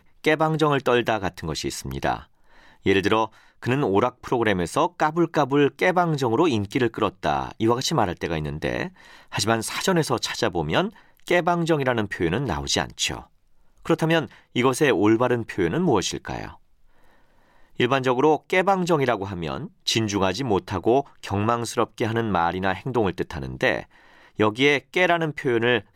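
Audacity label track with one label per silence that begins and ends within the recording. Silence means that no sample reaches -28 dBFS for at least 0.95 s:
16.470000	17.800000	silence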